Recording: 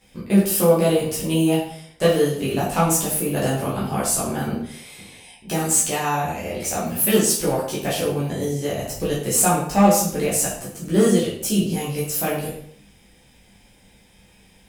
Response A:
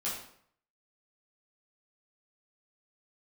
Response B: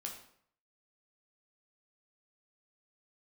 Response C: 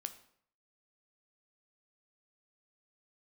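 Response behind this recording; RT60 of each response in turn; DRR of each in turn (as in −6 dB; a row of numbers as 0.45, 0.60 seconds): A; 0.65, 0.65, 0.60 seconds; −8.0, 0.5, 9.0 decibels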